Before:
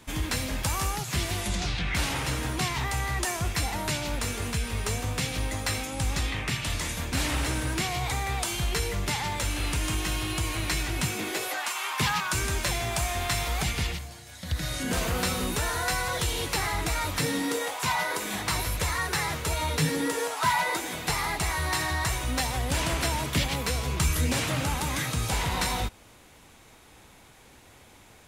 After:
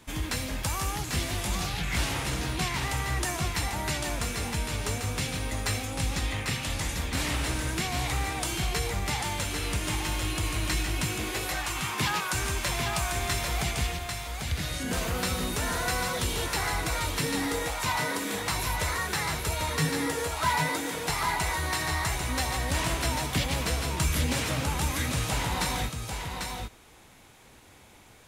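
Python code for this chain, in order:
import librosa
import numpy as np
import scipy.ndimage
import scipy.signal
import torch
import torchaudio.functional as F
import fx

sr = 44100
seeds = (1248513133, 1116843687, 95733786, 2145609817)

y = x + 10.0 ** (-5.0 / 20.0) * np.pad(x, (int(794 * sr / 1000.0), 0))[:len(x)]
y = y * 10.0 ** (-2.0 / 20.0)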